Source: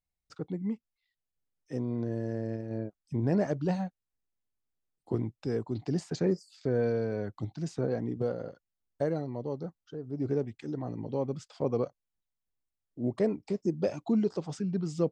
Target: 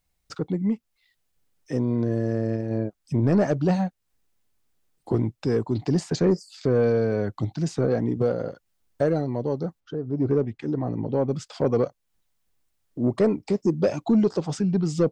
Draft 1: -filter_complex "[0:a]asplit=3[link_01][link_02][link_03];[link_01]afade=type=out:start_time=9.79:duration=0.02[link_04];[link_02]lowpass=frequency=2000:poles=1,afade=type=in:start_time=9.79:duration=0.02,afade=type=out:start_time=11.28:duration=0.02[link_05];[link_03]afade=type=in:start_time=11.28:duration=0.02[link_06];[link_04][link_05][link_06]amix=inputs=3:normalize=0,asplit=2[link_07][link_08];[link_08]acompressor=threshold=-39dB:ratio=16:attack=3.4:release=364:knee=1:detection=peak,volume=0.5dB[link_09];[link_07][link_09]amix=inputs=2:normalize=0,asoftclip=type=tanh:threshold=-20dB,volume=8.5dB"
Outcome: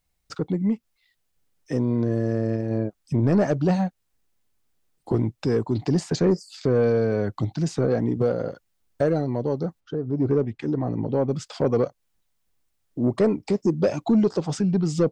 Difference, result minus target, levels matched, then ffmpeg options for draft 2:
downward compressor: peak gain reduction −10 dB
-filter_complex "[0:a]asplit=3[link_01][link_02][link_03];[link_01]afade=type=out:start_time=9.79:duration=0.02[link_04];[link_02]lowpass=frequency=2000:poles=1,afade=type=in:start_time=9.79:duration=0.02,afade=type=out:start_time=11.28:duration=0.02[link_05];[link_03]afade=type=in:start_time=11.28:duration=0.02[link_06];[link_04][link_05][link_06]amix=inputs=3:normalize=0,asplit=2[link_07][link_08];[link_08]acompressor=threshold=-49.5dB:ratio=16:attack=3.4:release=364:knee=1:detection=peak,volume=0.5dB[link_09];[link_07][link_09]amix=inputs=2:normalize=0,asoftclip=type=tanh:threshold=-20dB,volume=8.5dB"

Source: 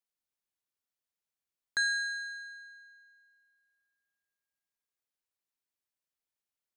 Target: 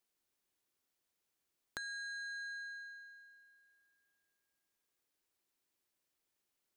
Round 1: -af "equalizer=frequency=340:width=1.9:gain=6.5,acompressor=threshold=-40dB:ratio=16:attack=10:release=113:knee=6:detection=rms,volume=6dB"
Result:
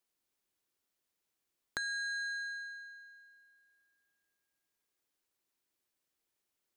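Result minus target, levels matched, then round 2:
downward compressor: peak gain reduction −6.5 dB
-af "equalizer=frequency=340:width=1.9:gain=6.5,acompressor=threshold=-47dB:ratio=16:attack=10:release=113:knee=6:detection=rms,volume=6dB"

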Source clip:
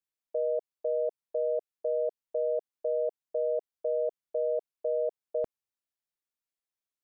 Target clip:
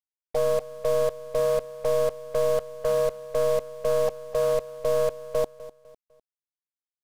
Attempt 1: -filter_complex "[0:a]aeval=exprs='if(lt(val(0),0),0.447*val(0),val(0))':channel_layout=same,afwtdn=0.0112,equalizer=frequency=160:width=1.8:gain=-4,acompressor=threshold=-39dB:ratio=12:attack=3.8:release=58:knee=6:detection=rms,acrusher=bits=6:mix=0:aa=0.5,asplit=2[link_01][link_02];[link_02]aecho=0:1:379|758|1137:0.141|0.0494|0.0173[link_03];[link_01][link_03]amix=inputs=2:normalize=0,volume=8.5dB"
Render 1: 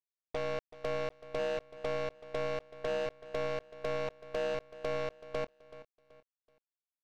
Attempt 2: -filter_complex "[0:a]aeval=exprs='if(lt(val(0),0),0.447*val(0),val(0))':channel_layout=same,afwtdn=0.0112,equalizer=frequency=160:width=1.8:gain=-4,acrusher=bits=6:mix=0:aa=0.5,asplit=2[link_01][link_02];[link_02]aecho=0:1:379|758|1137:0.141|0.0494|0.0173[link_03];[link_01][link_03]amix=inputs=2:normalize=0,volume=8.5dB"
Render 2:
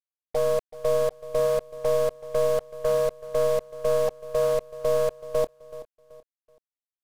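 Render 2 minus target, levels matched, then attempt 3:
echo 128 ms late
-filter_complex "[0:a]aeval=exprs='if(lt(val(0),0),0.447*val(0),val(0))':channel_layout=same,afwtdn=0.0112,equalizer=frequency=160:width=1.8:gain=-4,acrusher=bits=6:mix=0:aa=0.5,asplit=2[link_01][link_02];[link_02]aecho=0:1:251|502|753:0.141|0.0494|0.0173[link_03];[link_01][link_03]amix=inputs=2:normalize=0,volume=8.5dB"

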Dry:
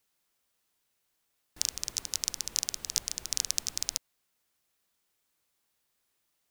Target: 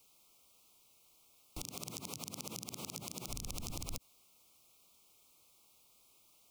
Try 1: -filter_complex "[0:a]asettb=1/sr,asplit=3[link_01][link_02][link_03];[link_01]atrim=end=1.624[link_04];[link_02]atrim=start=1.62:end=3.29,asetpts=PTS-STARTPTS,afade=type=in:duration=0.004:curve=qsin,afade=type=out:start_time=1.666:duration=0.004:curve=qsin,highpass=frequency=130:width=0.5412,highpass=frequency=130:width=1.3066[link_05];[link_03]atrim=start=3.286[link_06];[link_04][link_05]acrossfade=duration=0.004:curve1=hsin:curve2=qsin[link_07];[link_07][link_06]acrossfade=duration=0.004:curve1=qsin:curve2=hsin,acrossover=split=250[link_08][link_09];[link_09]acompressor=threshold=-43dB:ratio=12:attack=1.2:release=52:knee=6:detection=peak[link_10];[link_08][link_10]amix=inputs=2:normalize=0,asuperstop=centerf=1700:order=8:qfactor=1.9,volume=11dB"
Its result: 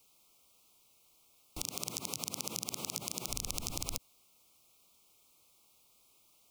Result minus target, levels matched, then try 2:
downward compressor: peak gain reduction −7.5 dB
-filter_complex "[0:a]asettb=1/sr,asplit=3[link_01][link_02][link_03];[link_01]atrim=end=1.624[link_04];[link_02]atrim=start=1.62:end=3.29,asetpts=PTS-STARTPTS,afade=type=in:duration=0.004:curve=qsin,afade=type=out:start_time=1.666:duration=0.004:curve=qsin,highpass=frequency=130:width=0.5412,highpass=frequency=130:width=1.3066[link_05];[link_03]atrim=start=3.286[link_06];[link_04][link_05]acrossfade=duration=0.004:curve1=hsin:curve2=qsin[link_07];[link_07][link_06]acrossfade=duration=0.004:curve1=qsin:curve2=hsin,acrossover=split=250[link_08][link_09];[link_09]acompressor=threshold=-51dB:ratio=12:attack=1.2:release=52:knee=6:detection=peak[link_10];[link_08][link_10]amix=inputs=2:normalize=0,asuperstop=centerf=1700:order=8:qfactor=1.9,volume=11dB"

